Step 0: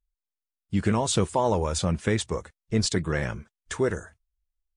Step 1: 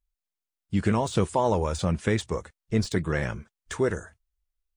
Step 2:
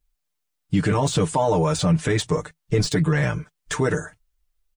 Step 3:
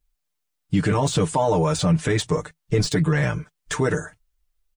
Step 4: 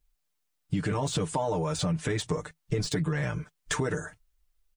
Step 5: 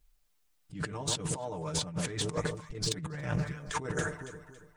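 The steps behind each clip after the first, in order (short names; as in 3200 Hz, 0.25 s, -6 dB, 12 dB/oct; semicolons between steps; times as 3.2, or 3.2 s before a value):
de-esser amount 65%
bell 160 Hz +5 dB 0.2 oct; comb 6.7 ms, depth 94%; limiter -17 dBFS, peak gain reduction 8.5 dB; gain +6 dB
nothing audible
compressor 5:1, threshold -26 dBFS, peak gain reduction 10.5 dB
echo with dull and thin repeats by turns 0.139 s, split 1100 Hz, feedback 58%, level -11.5 dB; negative-ratio compressor -33 dBFS, ratio -0.5; Doppler distortion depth 0.28 ms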